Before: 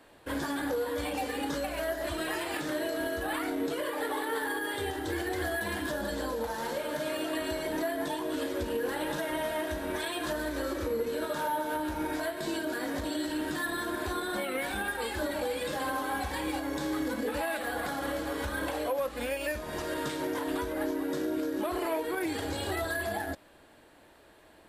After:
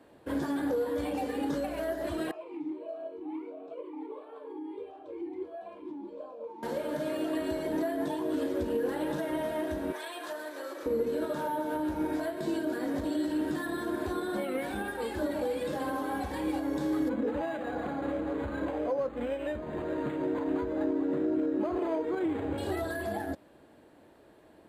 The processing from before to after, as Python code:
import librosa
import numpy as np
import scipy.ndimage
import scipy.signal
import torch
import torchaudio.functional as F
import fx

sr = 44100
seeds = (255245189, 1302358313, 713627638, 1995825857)

y = fx.vowel_sweep(x, sr, vowels='a-u', hz=1.5, at=(2.31, 6.63))
y = fx.highpass(y, sr, hz=690.0, slope=12, at=(9.92, 10.86))
y = fx.resample_linear(y, sr, factor=8, at=(17.09, 22.58))
y = fx.highpass(y, sr, hz=210.0, slope=6)
y = fx.tilt_shelf(y, sr, db=8.0, hz=660.0)